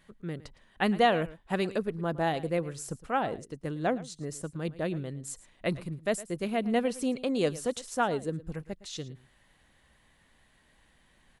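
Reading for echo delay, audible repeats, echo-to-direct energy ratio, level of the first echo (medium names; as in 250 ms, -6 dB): 111 ms, 1, -18.0 dB, -18.0 dB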